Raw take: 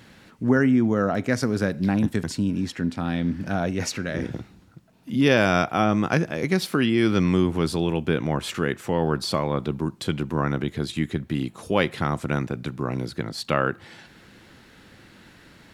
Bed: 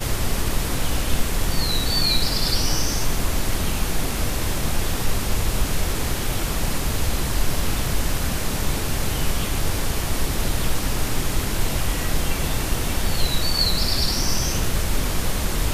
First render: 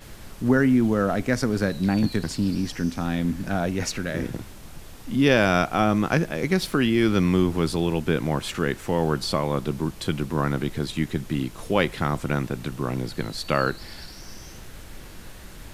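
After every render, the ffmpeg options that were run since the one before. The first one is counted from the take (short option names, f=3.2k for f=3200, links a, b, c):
-filter_complex "[1:a]volume=-20dB[a];[0:a][a]amix=inputs=2:normalize=0"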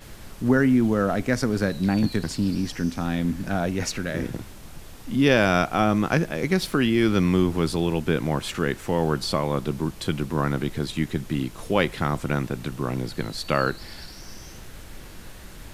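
-af anull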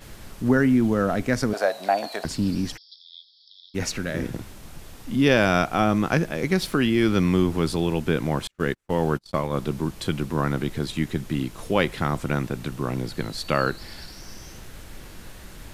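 -filter_complex "[0:a]asettb=1/sr,asplit=3[a][b][c];[a]atrim=end=1.534[d];[b]atrim=start=1.53:end=2.25,asetpts=PTS-STARTPTS,afade=t=in:d=0.004:c=qsin,afade=t=out:st=0.716:d=0.004:c=qsin,highpass=f=670:t=q:w=7.8[e];[c]atrim=start=2.246[f];[d][e]acrossfade=d=0.004:c1=hsin:c2=qsin[g];[g][f]acrossfade=d=0.004:c1=qsin:c2=hsin,asplit=3[h][i][j];[h]afade=t=out:st=2.76:d=0.02[k];[i]asuperpass=centerf=4200:order=20:qfactor=2,afade=t=in:st=2.76:d=0.02,afade=t=out:st=3.74:d=0.02[l];[j]afade=t=in:st=3.74:d=0.02[m];[k][l][m]amix=inputs=3:normalize=0,asettb=1/sr,asplit=3[n][o][p];[n]atrim=end=8.474[q];[o]atrim=start=8.47:end=9.57,asetpts=PTS-STARTPTS,afade=t=in:d=0.004:c=qsin,afade=t=out:st=1.096:d=0.004:c=qsin,agate=range=-41dB:threshold=-26dB:ratio=16:release=100:detection=peak[r];[p]atrim=start=9.566[s];[q][r]acrossfade=d=0.004:c1=hsin:c2=qsin[t];[t][s]acrossfade=d=0.004:c1=qsin:c2=hsin"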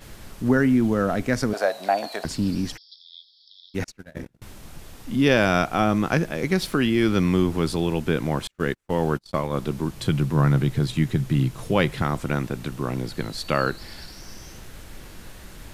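-filter_complex "[0:a]asettb=1/sr,asplit=3[a][b][c];[a]atrim=end=3.844[d];[b]atrim=start=3.84:end=4.42,asetpts=PTS-STARTPTS,afade=t=in:d=0.004:c=qsin,afade=t=out:st=0.576:d=0.004:c=qsin,agate=range=-36dB:threshold=-26dB:ratio=16:release=100:detection=peak[e];[c]atrim=start=4.416[f];[d][e]acrossfade=d=0.004:c1=hsin:c2=qsin[g];[g][f]acrossfade=d=0.004:c1=qsin:c2=hsin,asettb=1/sr,asplit=3[h][i][j];[h]atrim=end=9.944[k];[i]atrim=start=9.94:end=12.02,asetpts=PTS-STARTPTS,afade=t=in:d=0.004:c=qsin,afade=t=out:st=2.076:d=0.004:c=qsin,equalizer=f=130:w=2.4:g=11.5[l];[j]atrim=start=12.016[m];[k][l]acrossfade=d=0.004:c1=hsin:c2=qsin[n];[n][m]acrossfade=d=0.004:c1=qsin:c2=hsin"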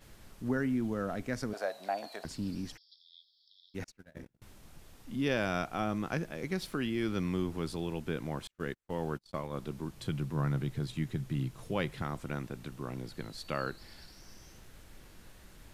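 -af "volume=-12.5dB"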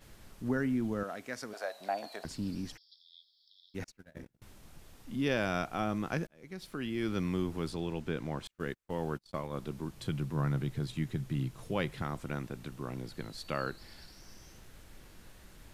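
-filter_complex "[0:a]asettb=1/sr,asplit=3[a][b][c];[a]atrim=end=1.034[d];[b]atrim=start=1.03:end=1.81,asetpts=PTS-STARTPTS,afade=t=in:d=0.004:c=qsin,afade=t=out:st=0.776:d=0.004:c=qsin,highpass=f=650:p=1[e];[c]atrim=start=1.806[f];[d][e]acrossfade=d=0.004:c1=hsin:c2=qsin[g];[g][f]acrossfade=d=0.004:c1=qsin:c2=hsin,asettb=1/sr,asplit=3[h][i][j];[h]atrim=end=7.704[k];[i]atrim=start=7.7:end=8.46,asetpts=PTS-STARTPTS,afade=t=in:d=0.004:c=qsin,afade=t=out:st=0.756:d=0.004:c=qsin,equalizer=f=12k:t=o:w=0.77:g=-8[l];[j]atrim=start=8.456[m];[k][l]acrossfade=d=0.004:c1=hsin:c2=qsin[n];[n][m]acrossfade=d=0.004:c1=qsin:c2=hsin,asplit=2[o][p];[o]atrim=end=6.27,asetpts=PTS-STARTPTS,afade=t=out:st=6.266:d=0.004:c=hsin[q];[p]atrim=start=6.27,asetpts=PTS-STARTPTS,afade=t=in:d=0.85[r];[q][r]concat=n=2:v=0:a=1"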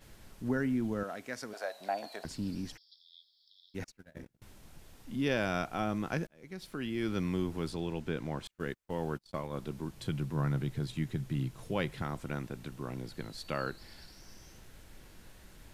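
-af "bandreject=f=1.2k:w=20"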